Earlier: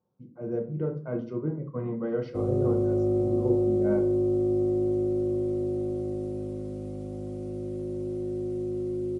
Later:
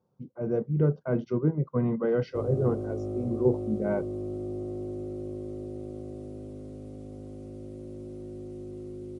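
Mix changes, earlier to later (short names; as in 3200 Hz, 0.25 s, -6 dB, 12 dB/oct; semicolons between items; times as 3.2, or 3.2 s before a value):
speech +8.0 dB; reverb: off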